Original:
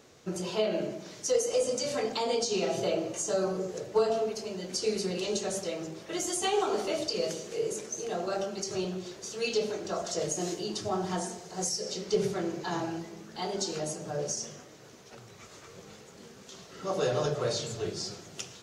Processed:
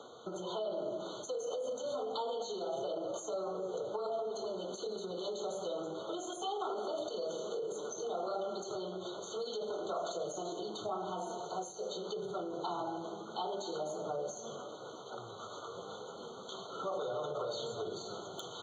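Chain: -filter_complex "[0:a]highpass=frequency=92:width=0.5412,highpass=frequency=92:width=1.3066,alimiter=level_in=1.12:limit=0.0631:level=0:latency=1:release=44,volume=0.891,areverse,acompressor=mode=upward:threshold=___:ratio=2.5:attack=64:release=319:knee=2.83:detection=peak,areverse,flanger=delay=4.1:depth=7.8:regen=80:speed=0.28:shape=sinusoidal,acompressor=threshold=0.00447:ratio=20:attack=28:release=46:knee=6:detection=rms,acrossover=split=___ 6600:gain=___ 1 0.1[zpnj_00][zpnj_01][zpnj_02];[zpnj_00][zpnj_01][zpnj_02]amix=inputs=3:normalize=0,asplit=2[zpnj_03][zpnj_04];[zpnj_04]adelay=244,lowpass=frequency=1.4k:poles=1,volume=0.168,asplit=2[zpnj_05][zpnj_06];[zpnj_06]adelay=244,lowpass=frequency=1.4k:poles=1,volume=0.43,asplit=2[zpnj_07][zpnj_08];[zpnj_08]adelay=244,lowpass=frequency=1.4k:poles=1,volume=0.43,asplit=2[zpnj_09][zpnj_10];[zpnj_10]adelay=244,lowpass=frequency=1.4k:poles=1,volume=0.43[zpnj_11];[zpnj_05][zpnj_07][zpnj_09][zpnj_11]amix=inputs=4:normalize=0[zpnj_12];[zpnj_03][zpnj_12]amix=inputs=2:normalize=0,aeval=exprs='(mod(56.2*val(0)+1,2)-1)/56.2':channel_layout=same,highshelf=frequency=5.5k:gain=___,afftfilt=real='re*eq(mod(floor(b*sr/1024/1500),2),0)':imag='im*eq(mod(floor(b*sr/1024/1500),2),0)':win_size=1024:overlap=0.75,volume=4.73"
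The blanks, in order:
0.00316, 410, 0.2, -11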